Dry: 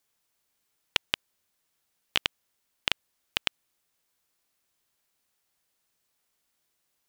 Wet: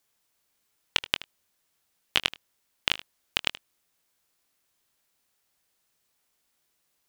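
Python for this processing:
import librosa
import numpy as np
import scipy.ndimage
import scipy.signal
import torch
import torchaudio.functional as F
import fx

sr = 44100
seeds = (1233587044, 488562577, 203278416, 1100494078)

p1 = fx.doubler(x, sr, ms=23.0, db=-13.5)
p2 = p1 + fx.echo_single(p1, sr, ms=77, db=-17.0, dry=0)
y = p2 * librosa.db_to_amplitude(2.0)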